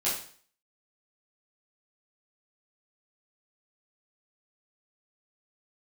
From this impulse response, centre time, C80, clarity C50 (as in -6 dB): 42 ms, 8.5 dB, 4.0 dB